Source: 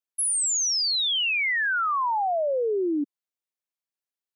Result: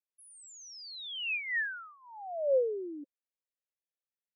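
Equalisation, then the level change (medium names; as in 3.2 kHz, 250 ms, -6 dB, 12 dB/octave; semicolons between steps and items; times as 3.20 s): vowel filter e; +1.0 dB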